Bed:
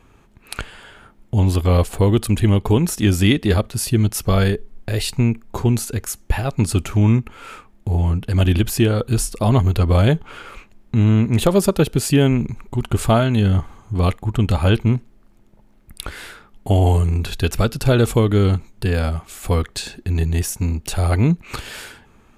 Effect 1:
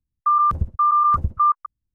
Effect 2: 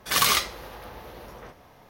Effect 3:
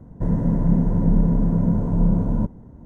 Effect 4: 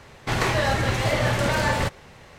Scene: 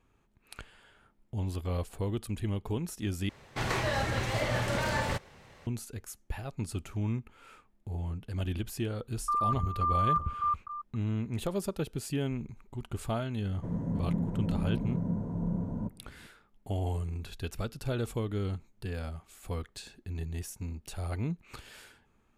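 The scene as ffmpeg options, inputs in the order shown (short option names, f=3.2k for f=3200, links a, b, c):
-filter_complex "[0:a]volume=-17.5dB[a];[1:a]aecho=1:1:276:0.266[b];[3:a]highpass=62[c];[a]asplit=2[d][e];[d]atrim=end=3.294[f];[4:a]atrim=end=2.38,asetpts=PTS-STARTPTS,volume=-8dB[g];[e]atrim=start=5.666[h];[b]atrim=end=1.94,asetpts=PTS-STARTPTS,volume=-12dB,afade=t=in:d=0.004:c=hsin,afade=t=out:st=1.936:d=0.004:c=hsin,adelay=9020[i];[c]atrim=end=2.85,asetpts=PTS-STARTPTS,volume=-12dB,afade=t=in:d=0.004:c=hsin,afade=t=out:st=2.846:d=0.004:c=hsin,adelay=13420[j];[f][g]acrossfade=d=0.004:c1=hsin:c2=hsin[k];[k][h]acrossfade=d=0.004:c1=hsin:c2=hsin[l];[l][i][j]amix=inputs=3:normalize=0"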